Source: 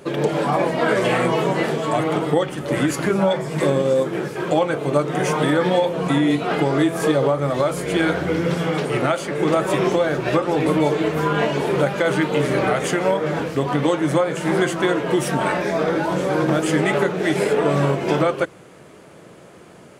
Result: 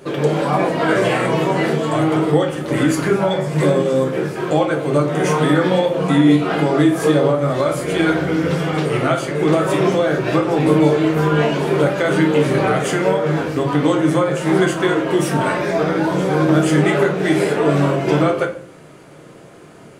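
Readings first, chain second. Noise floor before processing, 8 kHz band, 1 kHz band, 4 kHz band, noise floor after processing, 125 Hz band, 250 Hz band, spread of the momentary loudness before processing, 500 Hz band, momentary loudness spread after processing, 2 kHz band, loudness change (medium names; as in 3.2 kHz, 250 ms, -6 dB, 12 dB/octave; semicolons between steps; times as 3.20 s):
-44 dBFS, +1.5 dB, +2.0 dB, +2.0 dB, -41 dBFS, +5.0 dB, +4.5 dB, 3 LU, +2.5 dB, 4 LU, +2.0 dB, +3.0 dB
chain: simulated room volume 46 m³, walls mixed, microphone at 0.49 m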